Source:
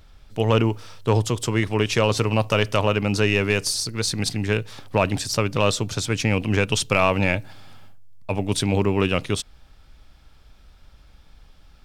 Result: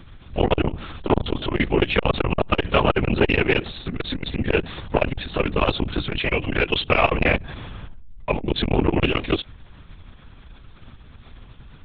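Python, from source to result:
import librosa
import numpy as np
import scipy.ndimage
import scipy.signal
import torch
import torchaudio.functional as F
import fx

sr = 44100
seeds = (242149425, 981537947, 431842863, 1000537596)

y = fx.highpass(x, sr, hz=fx.line((6.17, 540.0), (6.87, 130.0)), slope=6, at=(6.17, 6.87), fade=0.02)
y = fx.lpc_vocoder(y, sr, seeds[0], excitation='whisper', order=10)
y = fx.transformer_sat(y, sr, knee_hz=380.0)
y = y * librosa.db_to_amplitude(5.5)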